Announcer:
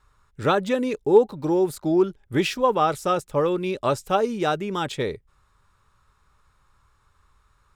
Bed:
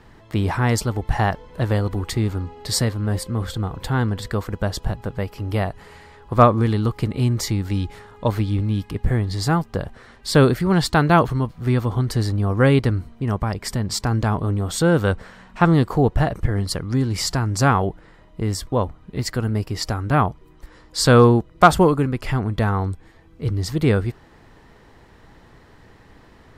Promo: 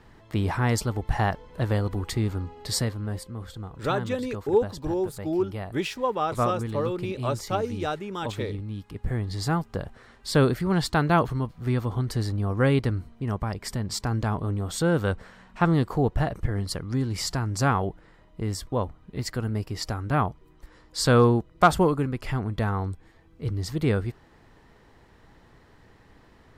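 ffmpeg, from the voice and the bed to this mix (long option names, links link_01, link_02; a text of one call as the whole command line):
ffmpeg -i stem1.wav -i stem2.wav -filter_complex "[0:a]adelay=3400,volume=-6dB[link_01];[1:a]volume=2dB,afade=type=out:start_time=2.64:duration=0.7:silence=0.398107,afade=type=in:start_time=8.82:duration=0.53:silence=0.473151[link_02];[link_01][link_02]amix=inputs=2:normalize=0" out.wav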